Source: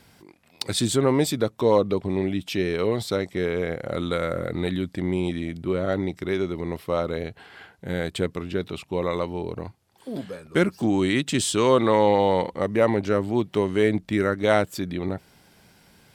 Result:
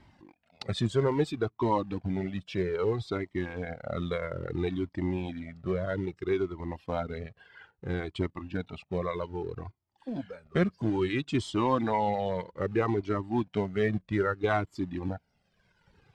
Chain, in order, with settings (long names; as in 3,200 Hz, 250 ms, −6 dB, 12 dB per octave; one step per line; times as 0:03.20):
reverb reduction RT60 1.3 s
dynamic equaliser 540 Hz, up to −7 dB, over −37 dBFS, Q 4.6
in parallel at −7 dB: log-companded quantiser 4 bits
on the sum: head-to-tape spacing loss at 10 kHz 25 dB
flanger whose copies keep moving one way falling 0.61 Hz